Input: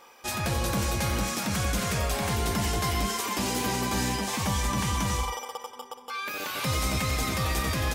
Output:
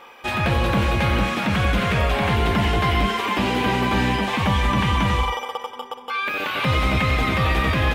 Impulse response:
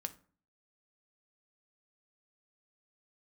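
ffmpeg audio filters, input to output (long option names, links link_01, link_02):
-filter_complex "[0:a]highshelf=frequency=4100:width_type=q:width=1.5:gain=-9.5,acrossover=split=4800[link_01][link_02];[link_02]acompressor=threshold=-52dB:ratio=4:attack=1:release=60[link_03];[link_01][link_03]amix=inputs=2:normalize=0,volume=8dB"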